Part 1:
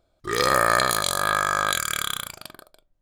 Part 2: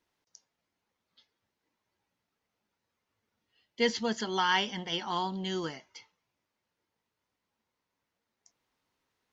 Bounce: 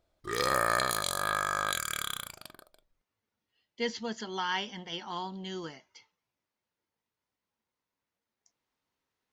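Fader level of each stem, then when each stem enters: -8.0 dB, -5.0 dB; 0.00 s, 0.00 s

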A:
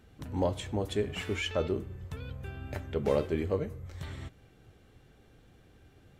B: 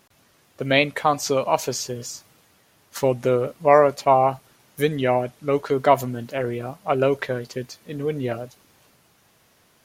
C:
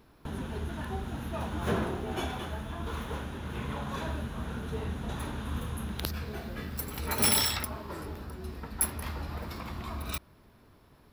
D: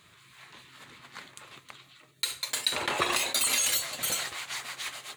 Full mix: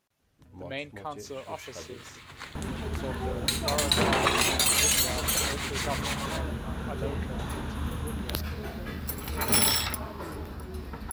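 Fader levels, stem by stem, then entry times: -14.0 dB, -18.0 dB, +2.0 dB, +2.5 dB; 0.20 s, 0.00 s, 2.30 s, 1.25 s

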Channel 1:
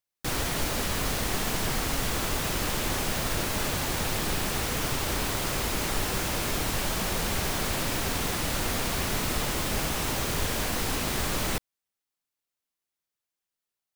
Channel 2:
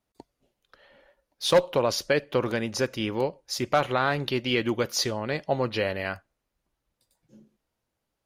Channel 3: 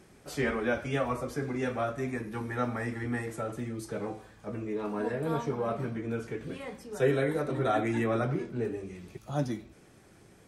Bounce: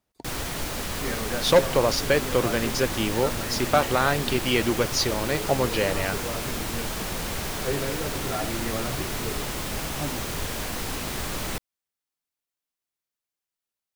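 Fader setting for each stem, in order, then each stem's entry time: -2.0 dB, +2.0 dB, -3.5 dB; 0.00 s, 0.00 s, 0.65 s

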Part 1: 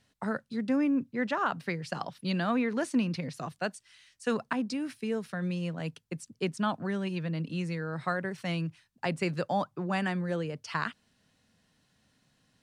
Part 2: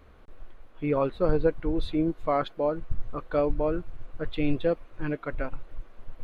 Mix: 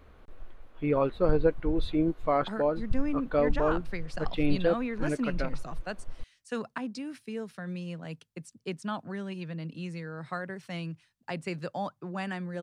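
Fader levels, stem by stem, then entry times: -4.5 dB, -0.5 dB; 2.25 s, 0.00 s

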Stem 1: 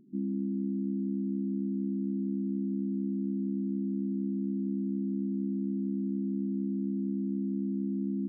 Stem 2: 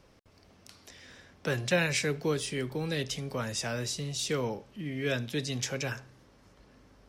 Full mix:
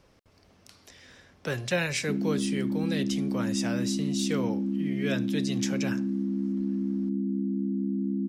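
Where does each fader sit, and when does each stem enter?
+3.0 dB, -0.5 dB; 1.95 s, 0.00 s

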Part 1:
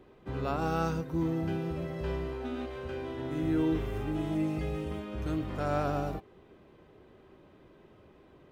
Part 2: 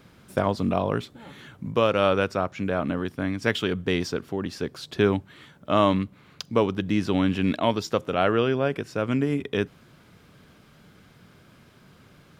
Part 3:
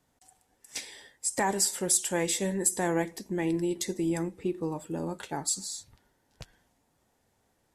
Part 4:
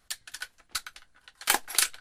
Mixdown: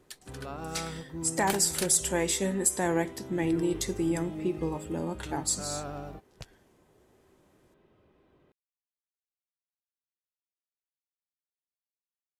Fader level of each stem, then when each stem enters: -7.5 dB, mute, +0.5 dB, -10.0 dB; 0.00 s, mute, 0.00 s, 0.00 s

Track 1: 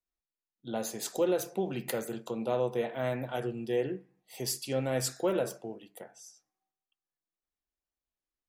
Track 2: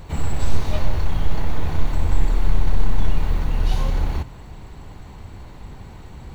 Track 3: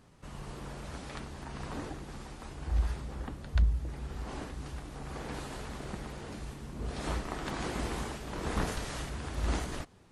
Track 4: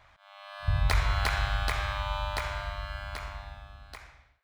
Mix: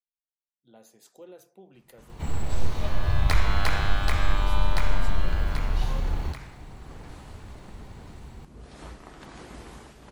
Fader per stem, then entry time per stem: -19.0 dB, -6.0 dB, -8.5 dB, +1.0 dB; 0.00 s, 2.10 s, 1.75 s, 2.40 s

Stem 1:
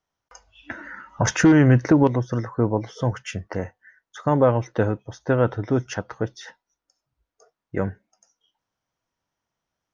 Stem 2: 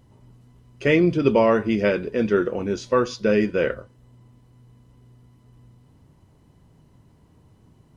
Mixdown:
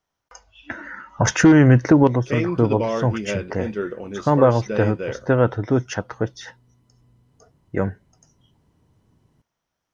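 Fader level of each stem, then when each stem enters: +2.5 dB, -6.5 dB; 0.00 s, 1.45 s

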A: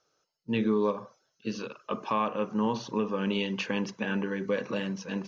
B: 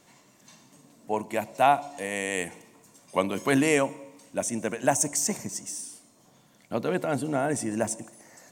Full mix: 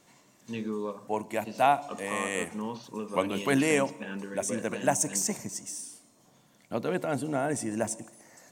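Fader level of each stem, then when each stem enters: -7.5 dB, -2.5 dB; 0.00 s, 0.00 s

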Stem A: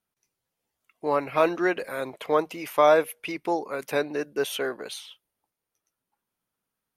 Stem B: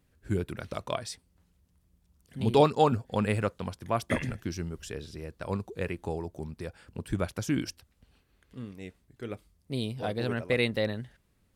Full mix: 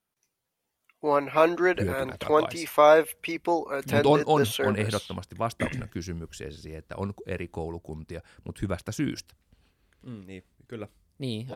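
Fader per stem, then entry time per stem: +1.0 dB, 0.0 dB; 0.00 s, 1.50 s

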